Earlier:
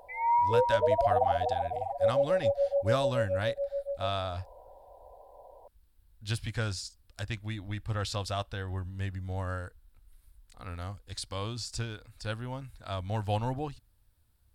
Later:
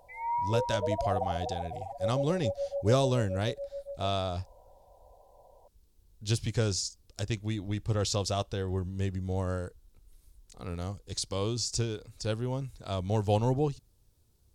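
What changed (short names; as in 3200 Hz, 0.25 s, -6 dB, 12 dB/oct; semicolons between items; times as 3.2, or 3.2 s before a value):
speech: add fifteen-band EQ 160 Hz +10 dB, 400 Hz +12 dB, 1600 Hz -6 dB, 6300 Hz +11 dB; background -6.0 dB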